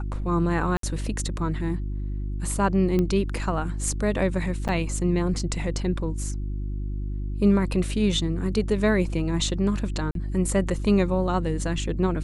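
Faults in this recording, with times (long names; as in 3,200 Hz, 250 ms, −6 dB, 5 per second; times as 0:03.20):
mains hum 50 Hz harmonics 7 −29 dBFS
0:00.77–0:00.83: drop-out 63 ms
0:02.99: click −14 dBFS
0:04.68–0:04.69: drop-out 7.9 ms
0:10.11–0:10.15: drop-out 42 ms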